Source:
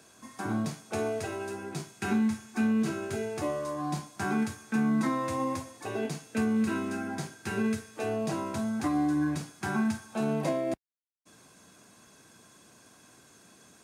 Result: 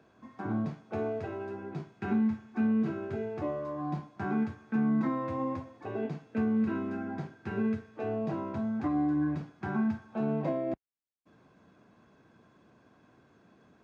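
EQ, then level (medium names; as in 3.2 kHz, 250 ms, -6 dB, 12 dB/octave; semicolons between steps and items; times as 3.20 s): tape spacing loss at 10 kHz 39 dB; 0.0 dB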